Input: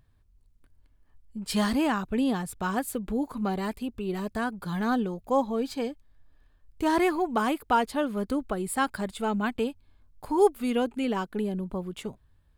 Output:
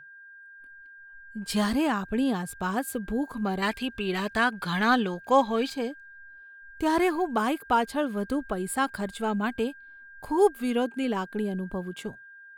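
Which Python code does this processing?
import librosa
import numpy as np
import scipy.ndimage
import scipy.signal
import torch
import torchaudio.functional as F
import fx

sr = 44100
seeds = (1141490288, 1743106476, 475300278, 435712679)

y = fx.noise_reduce_blind(x, sr, reduce_db=26)
y = fx.peak_eq(y, sr, hz=2600.0, db=13.0, octaves=2.7, at=(3.62, 5.7))
y = y + 10.0 ** (-46.0 / 20.0) * np.sin(2.0 * np.pi * 1600.0 * np.arange(len(y)) / sr)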